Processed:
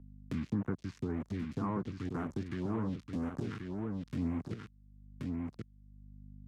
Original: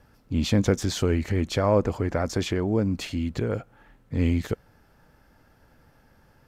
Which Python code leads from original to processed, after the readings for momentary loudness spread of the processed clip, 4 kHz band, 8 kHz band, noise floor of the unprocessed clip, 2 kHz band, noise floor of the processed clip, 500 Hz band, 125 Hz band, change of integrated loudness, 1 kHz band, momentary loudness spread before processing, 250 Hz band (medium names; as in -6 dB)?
12 LU, -22.5 dB, under -25 dB, -60 dBFS, -14.0 dB, -63 dBFS, -17.0 dB, -12.0 dB, -12.5 dB, -11.0 dB, 8 LU, -9.0 dB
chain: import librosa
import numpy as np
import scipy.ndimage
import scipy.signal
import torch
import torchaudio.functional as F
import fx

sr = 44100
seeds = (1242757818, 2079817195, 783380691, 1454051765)

y = fx.fixed_phaser(x, sr, hz=1400.0, stages=4)
y = np.where(np.abs(y) >= 10.0 ** (-30.0 / 20.0), y, 0.0)
y = scipy.signal.sosfilt(scipy.signal.butter(2, 140.0, 'highpass', fs=sr, output='sos'), y)
y = fx.peak_eq(y, sr, hz=1100.0, db=3.5, octaves=0.35)
y = fx.env_lowpass_down(y, sr, base_hz=2200.0, full_db=-21.5)
y = fx.rider(y, sr, range_db=10, speed_s=2.0)
y = fx.phaser_stages(y, sr, stages=2, low_hz=590.0, high_hz=4400.0, hz=1.9, feedback_pct=25)
y = fx.add_hum(y, sr, base_hz=50, snr_db=31)
y = fx.high_shelf(y, sr, hz=3800.0, db=-7.5)
y = y + 10.0 ** (-7.0 / 20.0) * np.pad(y, (int(1081 * sr / 1000.0), 0))[:len(y)]
y = fx.band_squash(y, sr, depth_pct=70)
y = y * librosa.db_to_amplitude(-7.0)